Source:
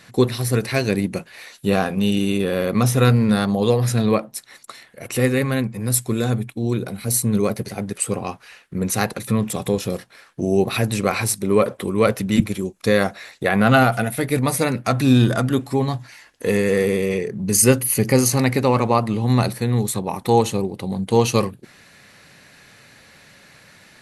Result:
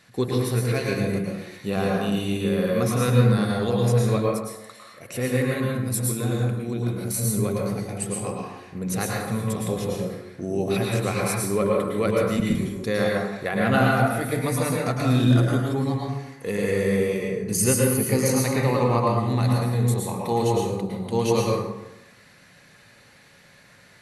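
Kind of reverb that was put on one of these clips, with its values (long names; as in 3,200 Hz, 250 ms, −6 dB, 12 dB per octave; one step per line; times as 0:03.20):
dense smooth reverb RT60 0.97 s, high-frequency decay 0.55×, pre-delay 95 ms, DRR −2.5 dB
level −8.5 dB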